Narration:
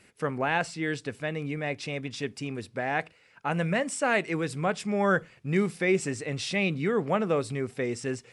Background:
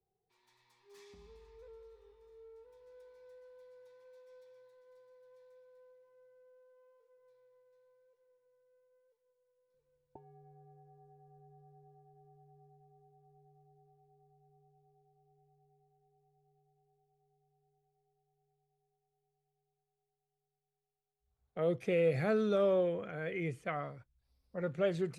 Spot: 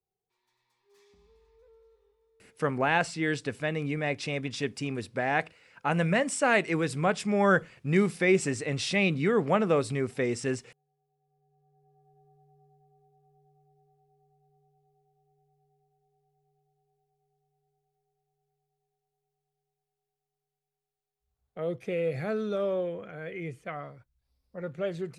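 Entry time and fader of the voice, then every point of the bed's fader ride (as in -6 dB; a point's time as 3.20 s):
2.40 s, +1.5 dB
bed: 1.94 s -5 dB
2.91 s -18 dB
11.08 s -18 dB
12.13 s 0 dB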